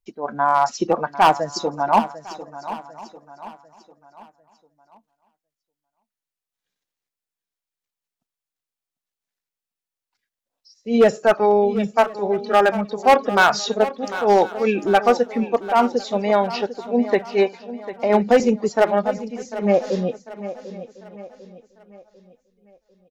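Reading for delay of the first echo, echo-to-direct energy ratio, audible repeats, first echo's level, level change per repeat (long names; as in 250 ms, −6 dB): 747 ms, −12.5 dB, 4, −14.0 dB, repeats not evenly spaced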